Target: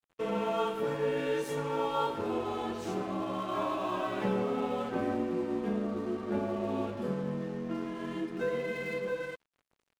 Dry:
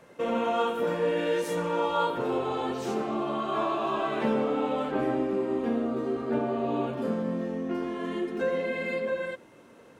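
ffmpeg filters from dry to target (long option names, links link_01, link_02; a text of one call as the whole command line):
ffmpeg -i in.wav -af "afreqshift=-28,aeval=exprs='sgn(val(0))*max(abs(val(0))-0.00473,0)':channel_layout=same,volume=-3.5dB" out.wav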